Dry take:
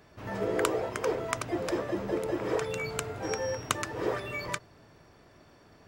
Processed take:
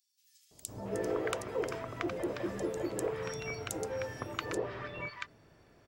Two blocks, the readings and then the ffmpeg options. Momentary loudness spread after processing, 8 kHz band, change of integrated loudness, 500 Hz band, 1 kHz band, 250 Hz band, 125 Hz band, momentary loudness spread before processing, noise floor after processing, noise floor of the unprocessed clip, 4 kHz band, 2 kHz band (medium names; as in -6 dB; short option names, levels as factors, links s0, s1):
7 LU, -5.0 dB, -5.0 dB, -4.5 dB, -6.5 dB, -4.0 dB, -4.0 dB, 5 LU, -68 dBFS, -58 dBFS, -6.0 dB, -5.0 dB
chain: -filter_complex "[0:a]acrossover=split=1000|4700[s0][s1][s2];[s0]adelay=510[s3];[s1]adelay=680[s4];[s3][s4][s2]amix=inputs=3:normalize=0,volume=0.631"